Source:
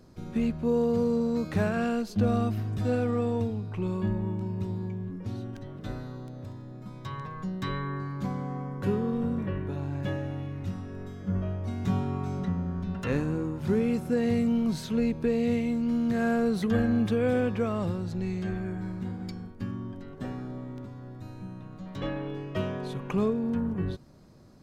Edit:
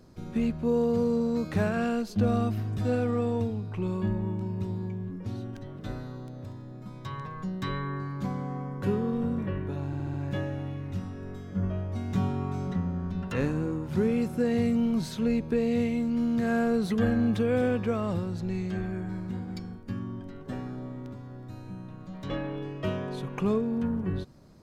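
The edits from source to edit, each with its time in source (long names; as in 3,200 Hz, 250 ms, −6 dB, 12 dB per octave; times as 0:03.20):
0:09.86: stutter 0.07 s, 5 plays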